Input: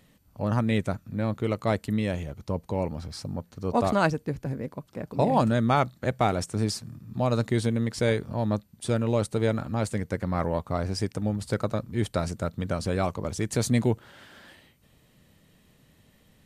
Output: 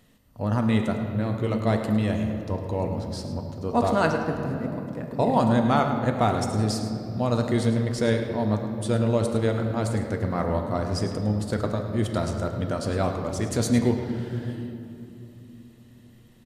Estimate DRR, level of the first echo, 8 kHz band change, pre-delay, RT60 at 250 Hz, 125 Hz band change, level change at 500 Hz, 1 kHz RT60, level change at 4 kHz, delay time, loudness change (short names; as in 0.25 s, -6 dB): 3.0 dB, -11.5 dB, +0.5 dB, 3 ms, 4.8 s, +2.5 dB, +2.0 dB, 2.3 s, +1.0 dB, 0.106 s, +2.0 dB